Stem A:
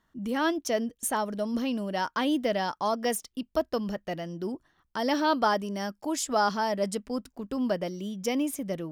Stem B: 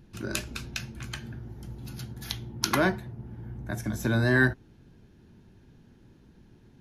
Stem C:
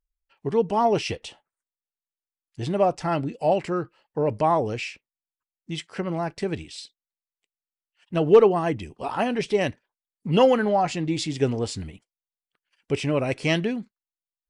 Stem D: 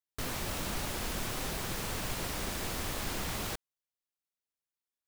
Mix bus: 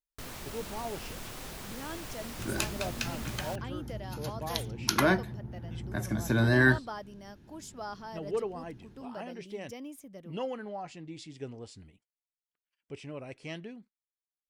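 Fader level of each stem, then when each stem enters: −15.5, −0.5, −18.0, −6.5 decibels; 1.45, 2.25, 0.00, 0.00 seconds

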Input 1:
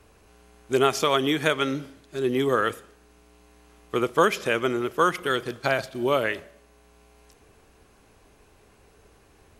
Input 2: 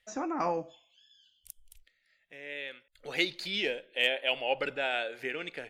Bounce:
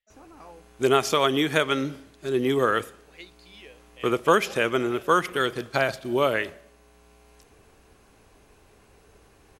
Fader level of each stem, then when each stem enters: +0.5, −16.5 decibels; 0.10, 0.00 seconds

